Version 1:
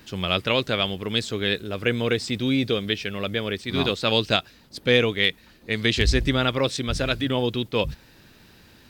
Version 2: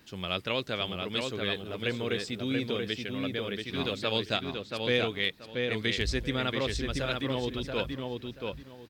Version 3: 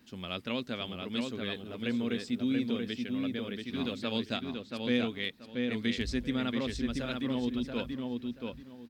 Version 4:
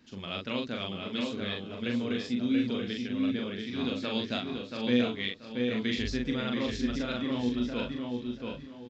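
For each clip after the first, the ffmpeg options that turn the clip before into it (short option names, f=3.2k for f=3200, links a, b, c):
-filter_complex "[0:a]lowshelf=f=74:g=-5.5,asplit=2[a][b];[b]adelay=682,lowpass=f=3.5k:p=1,volume=-3.5dB,asplit=2[c][d];[d]adelay=682,lowpass=f=3.5k:p=1,volume=0.23,asplit=2[e][f];[f]adelay=682,lowpass=f=3.5k:p=1,volume=0.23[g];[c][e][g]amix=inputs=3:normalize=0[h];[a][h]amix=inputs=2:normalize=0,volume=-8.5dB"
-af "equalizer=f=240:t=o:w=0.34:g=14,volume=-6dB"
-filter_complex "[0:a]asplit=2[a][b];[b]adelay=41,volume=-3dB[c];[a][c]amix=inputs=2:normalize=0,asplit=2[d][e];[e]aecho=0:1:709:0.266[f];[d][f]amix=inputs=2:normalize=0,aresample=16000,aresample=44100"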